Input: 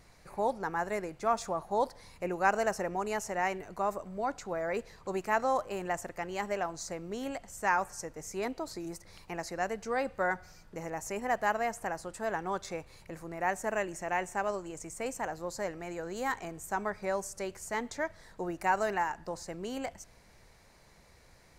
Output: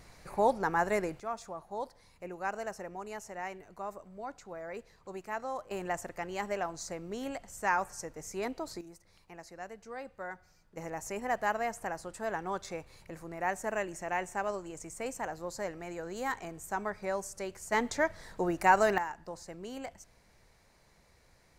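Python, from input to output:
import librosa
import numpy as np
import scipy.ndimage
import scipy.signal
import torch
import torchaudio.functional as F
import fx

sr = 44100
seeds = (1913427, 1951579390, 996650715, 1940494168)

y = fx.gain(x, sr, db=fx.steps((0.0, 4.0), (1.2, -8.5), (5.71, -1.0), (8.81, -11.0), (10.77, -1.5), (17.72, 5.0), (18.98, -4.5)))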